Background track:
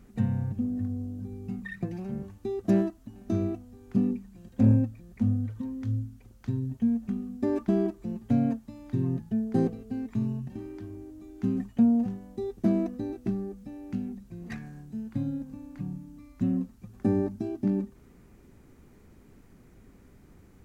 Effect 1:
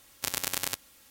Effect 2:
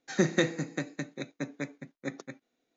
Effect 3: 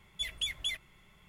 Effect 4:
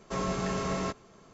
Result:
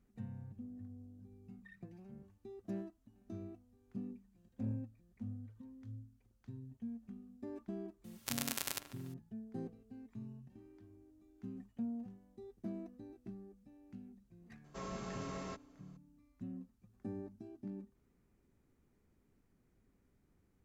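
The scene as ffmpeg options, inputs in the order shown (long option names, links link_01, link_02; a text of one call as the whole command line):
ffmpeg -i bed.wav -i cue0.wav -i cue1.wav -i cue2.wav -i cue3.wav -filter_complex "[0:a]volume=-19dB[link_01];[1:a]asplit=2[link_02][link_03];[link_03]adelay=145,lowpass=frequency=2000:poles=1,volume=-11dB,asplit=2[link_04][link_05];[link_05]adelay=145,lowpass=frequency=2000:poles=1,volume=0.49,asplit=2[link_06][link_07];[link_07]adelay=145,lowpass=frequency=2000:poles=1,volume=0.49,asplit=2[link_08][link_09];[link_09]adelay=145,lowpass=frequency=2000:poles=1,volume=0.49,asplit=2[link_10][link_11];[link_11]adelay=145,lowpass=frequency=2000:poles=1,volume=0.49[link_12];[link_02][link_04][link_06][link_08][link_10][link_12]amix=inputs=6:normalize=0,atrim=end=1.1,asetpts=PTS-STARTPTS,volume=-8dB,afade=type=in:duration=0.004:curve=hsin,afade=type=out:start_time=1.096:duration=0.004:curve=hsin,adelay=8040[link_13];[4:a]atrim=end=1.33,asetpts=PTS-STARTPTS,volume=-13dB,afade=type=in:duration=0.004:curve=hsin,afade=type=out:start_time=1.326:duration=0.004:curve=hsin,adelay=14640[link_14];[link_01][link_13][link_14]amix=inputs=3:normalize=0" out.wav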